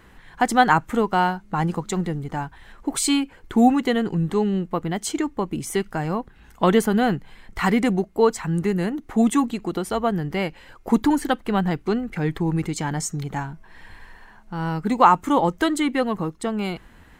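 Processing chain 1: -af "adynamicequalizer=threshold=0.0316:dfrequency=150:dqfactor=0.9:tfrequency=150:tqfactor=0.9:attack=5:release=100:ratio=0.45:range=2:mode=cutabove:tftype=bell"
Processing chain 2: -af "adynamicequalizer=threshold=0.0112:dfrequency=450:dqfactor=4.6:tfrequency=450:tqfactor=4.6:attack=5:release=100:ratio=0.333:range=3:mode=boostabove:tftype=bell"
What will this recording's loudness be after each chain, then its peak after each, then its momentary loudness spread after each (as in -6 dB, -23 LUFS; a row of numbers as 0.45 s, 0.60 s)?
-23.0 LUFS, -21.5 LUFS; -2.0 dBFS, -1.5 dBFS; 12 LU, 12 LU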